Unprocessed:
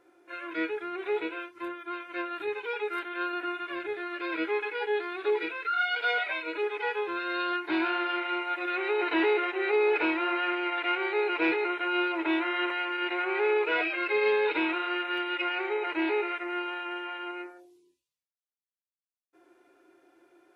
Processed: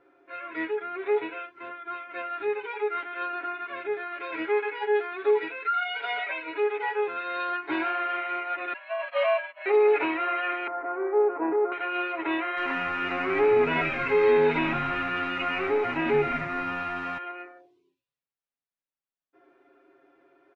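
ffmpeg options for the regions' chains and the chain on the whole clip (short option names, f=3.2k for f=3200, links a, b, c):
-filter_complex "[0:a]asettb=1/sr,asplit=3[a][b][c];[a]atrim=end=8.734[d];[b]atrim=start=8.73:end=9.66,asetpts=PTS-STARTPTS,afade=t=in:d=0.004:c=qsin,afade=t=out:st=0.926:d=0.004:c=qsin,highpass=f=150:w=0.5412,highpass=f=150:w=1.3066,agate=range=-33dB:threshold=-22dB:ratio=3:release=100:detection=peak,afreqshift=240[e];[c]atrim=start=9.656[f];[d][e]acrossfade=d=0.004:c1=hsin:c2=qsin[g];[g][f]acrossfade=d=0.004:c1=qsin:c2=hsin,asettb=1/sr,asplit=3[h][i][j];[h]atrim=end=10.674[k];[i]atrim=start=10.67:end=11.72,asetpts=PTS-STARTPTS,afade=t=in:d=0.004:c=qsin,afade=t=out:st=1.046:d=0.004:c=qsin,aeval=exprs='val(0)+0.5*0.00668*sgn(val(0))':c=same,lowpass=f=1.2k:w=0.5412,lowpass=f=1.2k:w=1.3066,lowshelf=f=170:t=q:w=1.5:g=-8.5[l];[j]atrim=start=11.716[m];[k][l]acrossfade=d=0.004:c1=hsin:c2=qsin[n];[n][m]acrossfade=d=0.004:c1=qsin:c2=hsin,asettb=1/sr,asplit=3[o][p][q];[o]atrim=end=12.574[r];[p]atrim=start=12.57:end=17.18,asetpts=PTS-STARTPTS,afade=t=in:d=0.004:c=qsin,afade=t=out:st=4.606:d=0.004:c=qsin,aeval=exprs='val(0)+0.5*0.0112*sgn(val(0))':c=same,asplit=9[s][t][u][v][w][x][y][z][aa];[t]adelay=83,afreqshift=-88,volume=-10dB[ab];[u]adelay=166,afreqshift=-176,volume=-14.2dB[ac];[v]adelay=249,afreqshift=-264,volume=-18.3dB[ad];[w]adelay=332,afreqshift=-352,volume=-22.5dB[ae];[x]adelay=415,afreqshift=-440,volume=-26.6dB[af];[y]adelay=498,afreqshift=-528,volume=-30.8dB[ag];[z]adelay=581,afreqshift=-616,volume=-34.9dB[ah];[aa]adelay=664,afreqshift=-704,volume=-39.1dB[ai];[s][ab][ac][ad][ae][af][ag][ah][ai]amix=inputs=9:normalize=0,atrim=end_sample=203301[aj];[q]atrim=start=17.176[ak];[r][aj]acrossfade=d=0.004:c1=hsin:c2=qsin[al];[al][ak]acrossfade=d=0.004:c1=qsin:c2=hsin,lowpass=2.6k,aecho=1:1:7.3:0.82"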